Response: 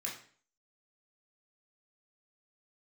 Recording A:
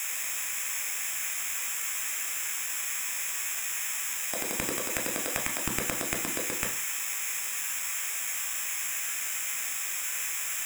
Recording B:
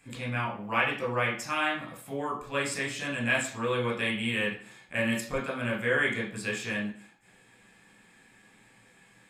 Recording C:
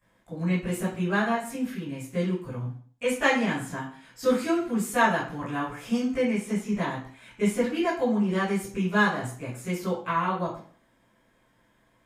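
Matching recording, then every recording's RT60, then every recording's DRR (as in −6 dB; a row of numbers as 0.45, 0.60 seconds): B; 0.45, 0.45, 0.45 seconds; 3.5, −4.0, −13.0 decibels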